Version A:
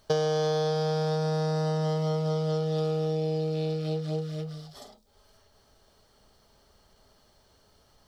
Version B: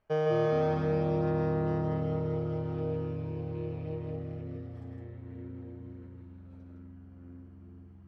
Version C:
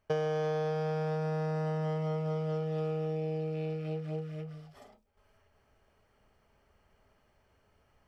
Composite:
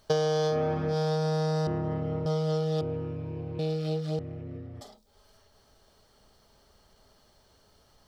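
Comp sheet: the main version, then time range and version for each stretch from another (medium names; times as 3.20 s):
A
0.52–0.92 s: from B, crossfade 0.10 s
1.67–2.26 s: from B
2.81–3.59 s: from B
4.19–4.81 s: from B
not used: C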